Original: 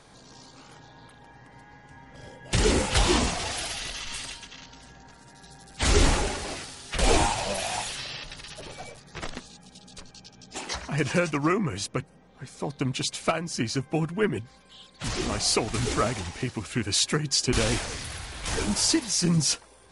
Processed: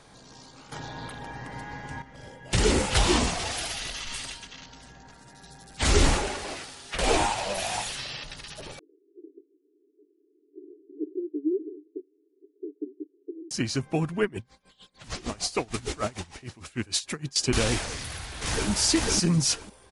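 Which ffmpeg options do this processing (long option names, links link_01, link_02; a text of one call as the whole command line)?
ffmpeg -i in.wav -filter_complex "[0:a]asettb=1/sr,asplit=3[link_01][link_02][link_03];[link_01]atrim=end=6.184[link_04];[link_02]atrim=start=6.18:end=7.57,asetpts=PTS-STARTPTS,afade=type=in:duration=0.004:curve=qsin,afade=type=out:start_time=1.386:duration=0.004:curve=qsin,bass=frequency=250:gain=-6,treble=frequency=4000:gain=-3[link_05];[link_03]atrim=start=7.566[link_06];[link_04][link_05]acrossfade=duration=0.004:curve1=hsin:curve2=qsin[link_07];[link_07][link_06]acrossfade=duration=0.004:curve1=qsin:curve2=hsin,asettb=1/sr,asplit=3[link_08][link_09][link_10];[link_08]atrim=end=8.794[link_11];[link_09]atrim=start=8.79:end=13.51,asetpts=PTS-STARTPTS,afade=type=in:duration=0.004:curve=qsin,afade=type=out:start_time=4.716:duration=0.004:curve=qsin,asuperpass=centerf=350:order=12:qfactor=2.5[link_12];[link_10]atrim=start=13.506[link_13];[link_11][link_12]acrossfade=duration=0.004:curve1=hsin:curve2=qsin[link_14];[link_14][link_13]acrossfade=duration=0.004:curve1=qsin:curve2=hsin,asettb=1/sr,asplit=3[link_15][link_16][link_17];[link_15]atrim=end=14.234[link_18];[link_16]atrim=start=14.23:end=17.36,asetpts=PTS-STARTPTS,afade=type=in:duration=0.004:curve=qsin,afade=type=out:start_time=3.126:duration=0.004:curve=qsin,aeval=exprs='val(0)*pow(10,-21*(0.5-0.5*cos(2*PI*6.6*n/s))/20)':channel_layout=same[link_19];[link_17]atrim=start=17.356[link_20];[link_18][link_19]acrossfade=duration=0.004:curve1=hsin:curve2=qsin[link_21];[link_21][link_20]acrossfade=duration=0.004:curve1=qsin:curve2=hsin,asplit=2[link_22][link_23];[link_23]afade=type=in:start_time=17.91:duration=0.01,afade=type=out:start_time=18.69:duration=0.01,aecho=0:1:500|1000|1500:1|0.15|0.0225[link_24];[link_22][link_24]amix=inputs=2:normalize=0,asplit=3[link_25][link_26][link_27];[link_25]atrim=end=0.722[link_28];[link_26]atrim=start=0.718:end=2.022,asetpts=PTS-STARTPTS,volume=11.5dB[link_29];[link_27]atrim=start=2.018[link_30];[link_28][link_29]acrossfade=duration=0.004:curve1=hsin:curve2=hsin[link_31];[link_31][link_30]acrossfade=duration=0.004:curve1=hsin:curve2=hsin" out.wav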